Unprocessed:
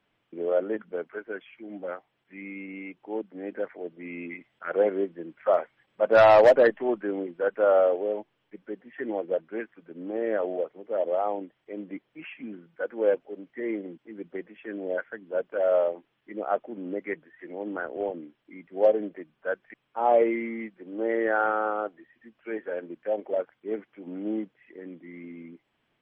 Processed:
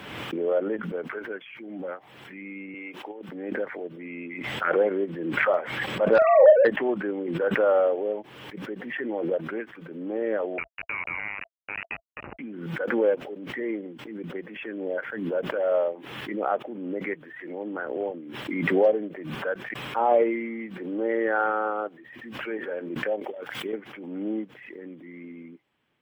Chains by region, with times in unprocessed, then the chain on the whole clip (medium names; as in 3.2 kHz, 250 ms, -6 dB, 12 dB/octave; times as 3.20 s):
2.74–3.29 s: high-pass 370 Hz + compressor with a negative ratio -37 dBFS, ratio -0.5
6.18–6.65 s: formants replaced by sine waves + doubling 39 ms -7 dB
10.58–12.39 s: compression, threshold -40 dBFS + companded quantiser 2-bit + frequency inversion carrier 2.8 kHz
23.21–23.73 s: treble shelf 2.2 kHz +12 dB + compressor with a negative ratio -37 dBFS
whole clip: high-pass 51 Hz; band-stop 670 Hz, Q 12; swell ahead of each attack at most 40 dB/s